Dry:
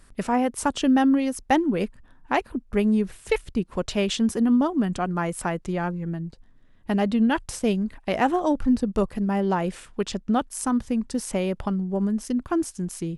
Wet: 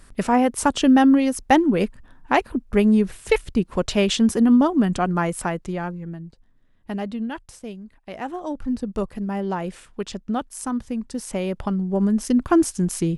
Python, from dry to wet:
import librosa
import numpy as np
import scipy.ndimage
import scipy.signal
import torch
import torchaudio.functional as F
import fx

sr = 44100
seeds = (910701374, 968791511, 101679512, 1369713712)

y = fx.gain(x, sr, db=fx.line((5.15, 4.5), (6.27, -5.0), (6.96, -5.0), (7.82, -13.5), (8.91, -2.5), (11.12, -2.5), (12.47, 7.5)))